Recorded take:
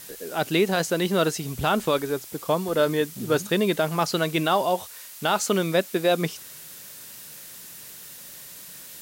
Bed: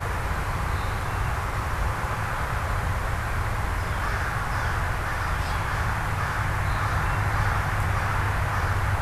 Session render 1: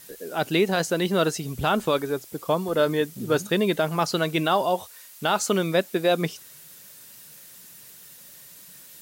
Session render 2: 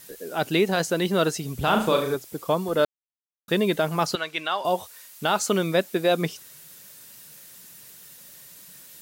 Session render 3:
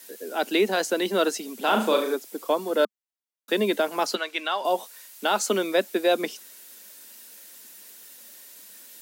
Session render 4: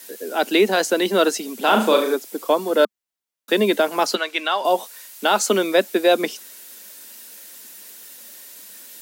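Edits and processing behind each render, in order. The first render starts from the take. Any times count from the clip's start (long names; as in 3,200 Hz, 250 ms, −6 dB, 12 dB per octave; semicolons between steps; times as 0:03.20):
broadband denoise 6 dB, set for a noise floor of −43 dBFS
0:01.64–0:02.15: flutter between parallel walls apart 6.3 metres, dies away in 0.46 s; 0:02.85–0:03.48: silence; 0:04.15–0:04.65: resonant band-pass 2,300 Hz, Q 0.67
Butterworth high-pass 210 Hz 72 dB per octave; notch filter 1,200 Hz, Q 14
level +5.5 dB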